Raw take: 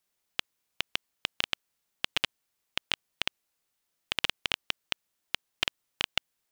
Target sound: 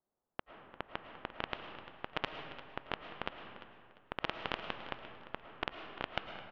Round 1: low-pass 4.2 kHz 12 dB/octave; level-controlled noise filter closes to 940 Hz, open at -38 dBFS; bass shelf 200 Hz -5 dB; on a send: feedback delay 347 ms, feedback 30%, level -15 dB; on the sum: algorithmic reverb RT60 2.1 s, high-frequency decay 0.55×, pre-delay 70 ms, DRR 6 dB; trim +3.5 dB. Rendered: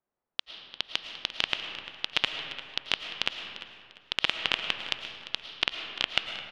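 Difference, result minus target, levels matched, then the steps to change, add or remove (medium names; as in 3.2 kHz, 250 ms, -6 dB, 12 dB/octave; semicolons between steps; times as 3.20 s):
1 kHz band -10.5 dB
change: low-pass 1.2 kHz 12 dB/octave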